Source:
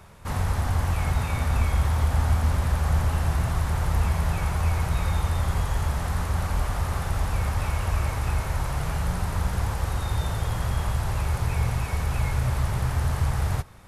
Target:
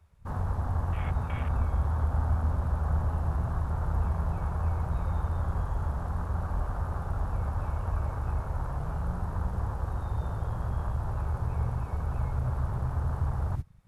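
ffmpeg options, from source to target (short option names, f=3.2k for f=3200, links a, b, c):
-af "afwtdn=0.0224,volume=-5dB"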